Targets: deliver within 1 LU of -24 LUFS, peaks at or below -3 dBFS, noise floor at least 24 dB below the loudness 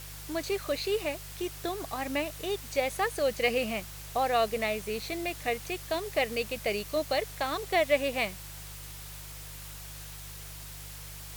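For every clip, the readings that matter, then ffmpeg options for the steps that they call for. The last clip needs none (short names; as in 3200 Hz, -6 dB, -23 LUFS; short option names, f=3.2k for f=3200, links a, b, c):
hum 50 Hz; harmonics up to 150 Hz; hum level -44 dBFS; noise floor -44 dBFS; noise floor target -55 dBFS; loudness -31.0 LUFS; peak -12.5 dBFS; loudness target -24.0 LUFS
-> -af "bandreject=f=50:t=h:w=4,bandreject=f=100:t=h:w=4,bandreject=f=150:t=h:w=4"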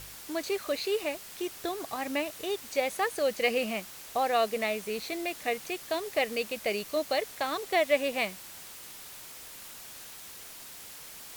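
hum none; noise floor -46 dBFS; noise floor target -55 dBFS
-> -af "afftdn=nr=9:nf=-46"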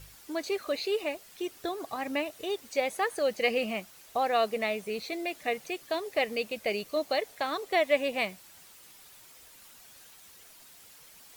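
noise floor -54 dBFS; noise floor target -55 dBFS
-> -af "afftdn=nr=6:nf=-54"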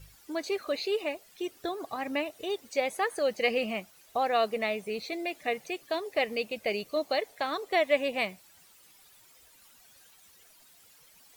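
noise floor -59 dBFS; loudness -31.0 LUFS; peak -12.5 dBFS; loudness target -24.0 LUFS
-> -af "volume=7dB"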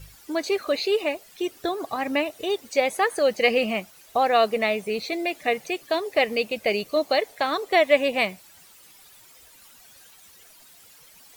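loudness -24.0 LUFS; peak -5.5 dBFS; noise floor -52 dBFS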